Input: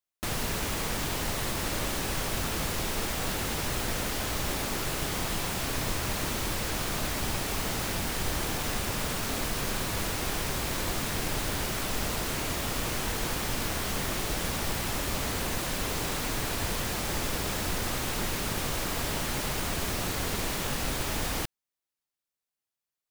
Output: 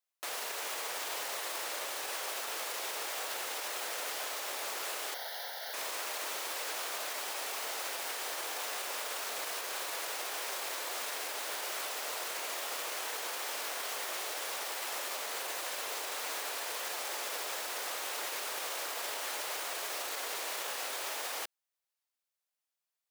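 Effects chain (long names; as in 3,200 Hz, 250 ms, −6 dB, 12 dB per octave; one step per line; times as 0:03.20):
high-pass filter 480 Hz 24 dB per octave
brickwall limiter −28.5 dBFS, peak gain reduction 8 dB
0:05.14–0:05.74: phaser with its sweep stopped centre 1,700 Hz, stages 8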